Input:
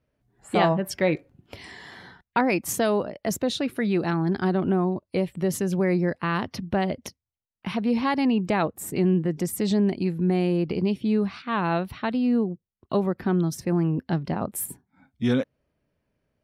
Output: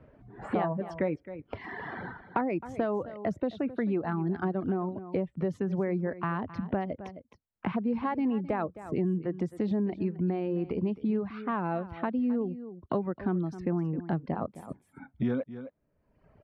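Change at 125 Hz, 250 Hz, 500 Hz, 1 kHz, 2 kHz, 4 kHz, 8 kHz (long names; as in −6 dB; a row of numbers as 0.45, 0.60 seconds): −7.0 dB, −6.0 dB, −6.0 dB, −6.0 dB, −9.0 dB, below −15 dB, below −30 dB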